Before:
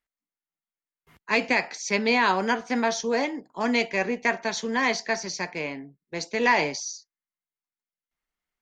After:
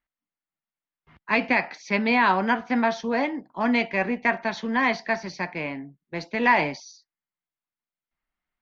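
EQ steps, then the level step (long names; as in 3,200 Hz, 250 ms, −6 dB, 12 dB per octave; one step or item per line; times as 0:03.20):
high-frequency loss of the air 280 metres
parametric band 440 Hz −7.5 dB 0.47 octaves
+4.0 dB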